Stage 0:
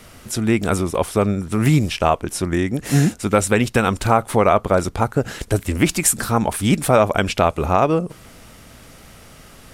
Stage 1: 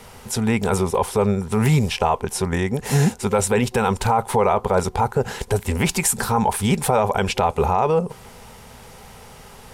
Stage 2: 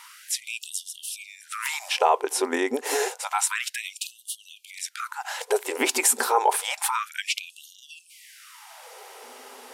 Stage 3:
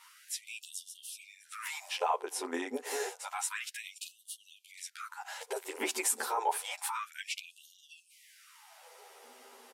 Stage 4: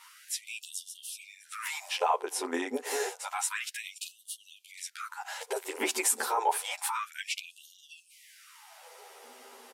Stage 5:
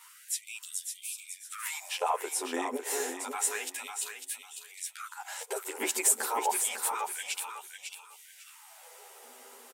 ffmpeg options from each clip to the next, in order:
-af "superequalizer=6b=0.282:7b=1.78:9b=2.82,alimiter=limit=-8.5dB:level=0:latency=1:release=10"
-af "afftfilt=real='re*gte(b*sr/1024,230*pow(2800/230,0.5+0.5*sin(2*PI*0.29*pts/sr)))':imag='im*gte(b*sr/1024,230*pow(2800/230,0.5+0.5*sin(2*PI*0.29*pts/sr)))':win_size=1024:overlap=0.75"
-filter_complex "[0:a]asplit=2[a][b];[b]adelay=11.2,afreqshift=-0.49[c];[a][c]amix=inputs=2:normalize=1,volume=-7.5dB"
-af "acontrast=85,volume=-3.5dB"
-af "aexciter=amount=1.6:drive=7.6:freq=7k,aecho=1:1:550|1100|1650:0.447|0.0983|0.0216,volume=-2.5dB"

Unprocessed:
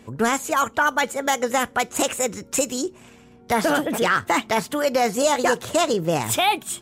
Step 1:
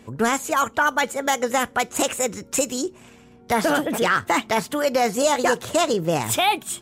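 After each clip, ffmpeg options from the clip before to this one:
-af anull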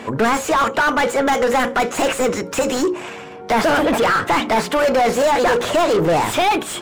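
-filter_complex "[0:a]bandreject=f=60:t=h:w=6,bandreject=f=120:t=h:w=6,bandreject=f=180:t=h:w=6,bandreject=f=240:t=h:w=6,bandreject=f=300:t=h:w=6,bandreject=f=360:t=h:w=6,bandreject=f=420:t=h:w=6,bandreject=f=480:t=h:w=6,bandreject=f=540:t=h:w=6,asplit=2[a][b];[b]highpass=f=720:p=1,volume=30dB,asoftclip=type=tanh:threshold=-8dB[c];[a][c]amix=inputs=2:normalize=0,lowpass=f=1.5k:p=1,volume=-6dB"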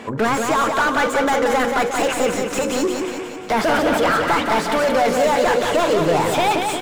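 -af "aecho=1:1:178|356|534|712|890|1068|1246:0.562|0.309|0.17|0.0936|0.0515|0.0283|0.0156,volume=-2.5dB"

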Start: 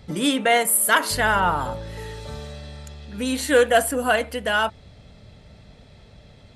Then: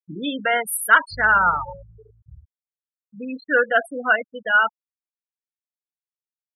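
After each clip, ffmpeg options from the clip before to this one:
-af "afftfilt=real='re*gte(hypot(re,im),0.158)':imag='im*gte(hypot(re,im),0.158)':win_size=1024:overlap=0.75,equalizer=f=1.4k:w=1.9:g=13.5,volume=-5.5dB"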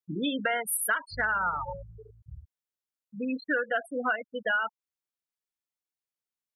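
-af "acompressor=threshold=-25dB:ratio=10"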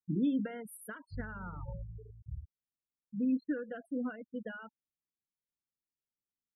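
-af "firequalizer=gain_entry='entry(240,0);entry(700,-21);entry(2600,-24)':delay=0.05:min_phase=1,volume=2.5dB"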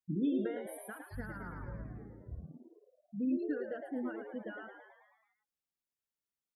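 -filter_complex "[0:a]asplit=8[a][b][c][d][e][f][g][h];[b]adelay=109,afreqshift=88,volume=-7dB[i];[c]adelay=218,afreqshift=176,volume=-11.7dB[j];[d]adelay=327,afreqshift=264,volume=-16.5dB[k];[e]adelay=436,afreqshift=352,volume=-21.2dB[l];[f]adelay=545,afreqshift=440,volume=-25.9dB[m];[g]adelay=654,afreqshift=528,volume=-30.7dB[n];[h]adelay=763,afreqshift=616,volume=-35.4dB[o];[a][i][j][k][l][m][n][o]amix=inputs=8:normalize=0,volume=-2.5dB"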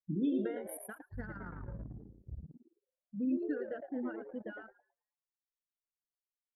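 -af "crystalizer=i=1:c=0,anlmdn=0.0631"

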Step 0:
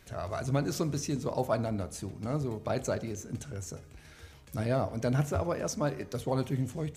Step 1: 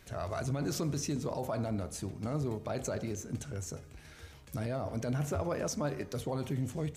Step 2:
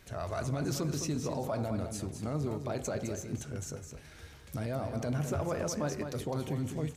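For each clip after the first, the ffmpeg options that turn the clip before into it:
-af "alimiter=level_in=1dB:limit=-24dB:level=0:latency=1:release=27,volume=-1dB"
-af "aecho=1:1:208:0.422"

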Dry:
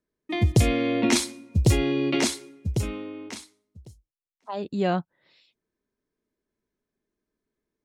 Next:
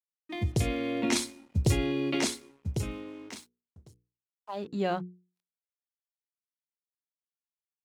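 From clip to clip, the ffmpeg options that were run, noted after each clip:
-af "dynaudnorm=f=170:g=11:m=4dB,aeval=exprs='sgn(val(0))*max(abs(val(0))-0.00398,0)':c=same,bandreject=f=60:t=h:w=6,bandreject=f=120:t=h:w=6,bandreject=f=180:t=h:w=6,bandreject=f=240:t=h:w=6,bandreject=f=300:t=h:w=6,bandreject=f=360:t=h:w=6,bandreject=f=420:t=h:w=6,bandreject=f=480:t=h:w=6,volume=-8dB"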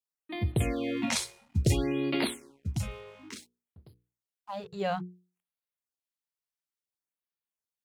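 -af "afftfilt=real='re*(1-between(b*sr/1024,250*pow(7300/250,0.5+0.5*sin(2*PI*0.58*pts/sr))/1.41,250*pow(7300/250,0.5+0.5*sin(2*PI*0.58*pts/sr))*1.41))':imag='im*(1-between(b*sr/1024,250*pow(7300/250,0.5+0.5*sin(2*PI*0.58*pts/sr))/1.41,250*pow(7300/250,0.5+0.5*sin(2*PI*0.58*pts/sr))*1.41))':win_size=1024:overlap=0.75"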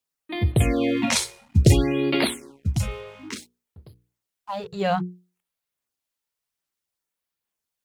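-af "aphaser=in_gain=1:out_gain=1:delay=2.3:decay=0.25:speed=1.2:type=sinusoidal,volume=7.5dB"

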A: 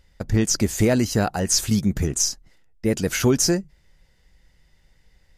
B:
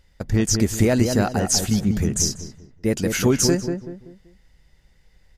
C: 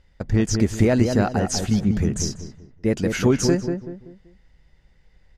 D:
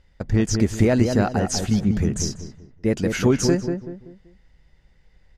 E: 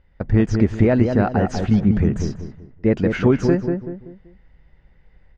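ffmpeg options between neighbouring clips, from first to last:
-filter_complex "[0:a]asplit=2[a][b];[b]adelay=191,lowpass=f=1.2k:p=1,volume=-5dB,asplit=2[c][d];[d]adelay=191,lowpass=f=1.2k:p=1,volume=0.36,asplit=2[e][f];[f]adelay=191,lowpass=f=1.2k:p=1,volume=0.36,asplit=2[g][h];[h]adelay=191,lowpass=f=1.2k:p=1,volume=0.36[i];[a][c][e][g][i]amix=inputs=5:normalize=0"
-af "aemphasis=mode=reproduction:type=50fm"
-af anull
-af "lowpass=2.3k,dynaudnorm=f=100:g=3:m=4dB"

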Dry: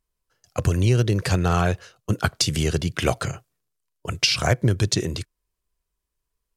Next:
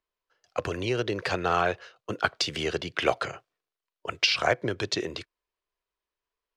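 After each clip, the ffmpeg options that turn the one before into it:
-filter_complex "[0:a]acrossover=split=330 4700:gain=0.126 1 0.0891[a][b][c];[a][b][c]amix=inputs=3:normalize=0"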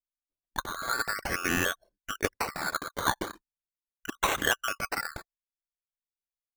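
-af "afftfilt=real='real(if(lt(b,960),b+48*(1-2*mod(floor(b/48),2)),b),0)':imag='imag(if(lt(b,960),b+48*(1-2*mod(floor(b/48),2)),b),0)':win_size=2048:overlap=0.75,anlmdn=1.58,acrusher=samples=13:mix=1:aa=0.000001:lfo=1:lforange=7.8:lforate=0.4,volume=-3dB"

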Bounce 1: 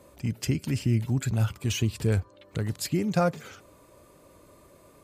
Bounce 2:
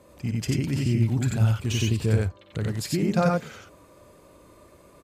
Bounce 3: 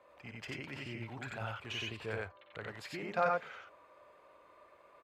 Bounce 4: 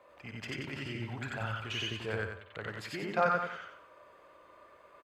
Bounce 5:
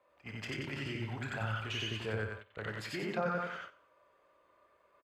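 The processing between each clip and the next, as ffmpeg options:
-filter_complex "[0:a]highshelf=f=9.1k:g=-6,asplit=2[a][b];[b]aecho=0:1:55.39|90.38:0.355|0.891[c];[a][c]amix=inputs=2:normalize=0"
-filter_complex "[0:a]acrossover=split=550 3100:gain=0.0794 1 0.0794[a][b][c];[a][b][c]amix=inputs=3:normalize=0,volume=-2.5dB"
-af "aecho=1:1:91|182|273|364:0.473|0.151|0.0485|0.0155,volume=3dB"
-filter_complex "[0:a]asplit=2[a][b];[b]adelay=28,volume=-11.5dB[c];[a][c]amix=inputs=2:normalize=0,acrossover=split=490[d][e];[e]alimiter=level_in=5.5dB:limit=-24dB:level=0:latency=1:release=124,volume=-5.5dB[f];[d][f]amix=inputs=2:normalize=0,agate=range=-11dB:threshold=-46dB:ratio=16:detection=peak"

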